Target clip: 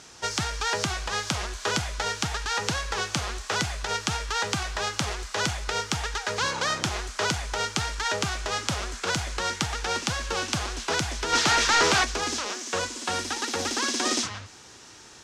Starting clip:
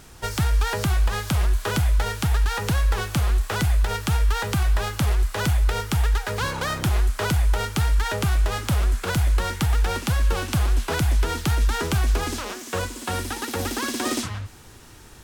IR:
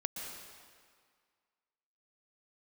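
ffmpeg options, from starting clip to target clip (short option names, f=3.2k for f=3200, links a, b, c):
-filter_complex "[0:a]highpass=f=350:p=1,asplit=3[a][b][c];[a]afade=t=out:st=11.32:d=0.02[d];[b]asplit=2[e][f];[f]highpass=f=720:p=1,volume=25dB,asoftclip=type=tanh:threshold=-13dB[g];[e][g]amix=inputs=2:normalize=0,lowpass=f=3.8k:p=1,volume=-6dB,afade=t=in:st=11.32:d=0.02,afade=t=out:st=12.03:d=0.02[h];[c]afade=t=in:st=12.03:d=0.02[i];[d][h][i]amix=inputs=3:normalize=0,lowpass=f=6.2k:t=q:w=2"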